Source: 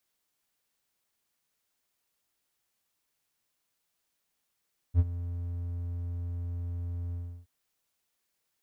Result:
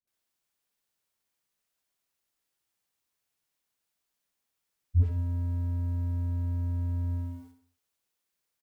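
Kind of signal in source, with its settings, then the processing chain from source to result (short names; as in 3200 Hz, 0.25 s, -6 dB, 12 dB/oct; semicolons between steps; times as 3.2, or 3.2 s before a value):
ADSR triangle 86.8 Hz, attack 53 ms, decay 41 ms, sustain -15.5 dB, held 2.19 s, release 0.332 s -14.5 dBFS
sample leveller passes 2; dispersion highs, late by 75 ms, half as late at 370 Hz; on a send: feedback echo 65 ms, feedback 45%, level -8 dB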